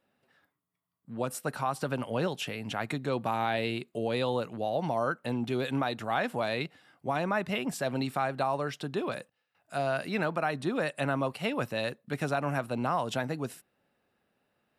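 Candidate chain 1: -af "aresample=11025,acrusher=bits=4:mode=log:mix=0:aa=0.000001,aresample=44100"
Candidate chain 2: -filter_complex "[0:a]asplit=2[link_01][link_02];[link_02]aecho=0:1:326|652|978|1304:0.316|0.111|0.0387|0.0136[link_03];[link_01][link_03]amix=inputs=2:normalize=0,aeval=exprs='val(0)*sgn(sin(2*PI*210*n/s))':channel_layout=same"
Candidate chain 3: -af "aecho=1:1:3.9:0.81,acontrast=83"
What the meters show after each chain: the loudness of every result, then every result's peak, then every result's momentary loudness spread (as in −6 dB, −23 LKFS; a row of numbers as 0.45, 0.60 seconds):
−32.0, −31.5, −22.5 LKFS; −16.5, −15.0, −8.0 dBFS; 5, 6, 6 LU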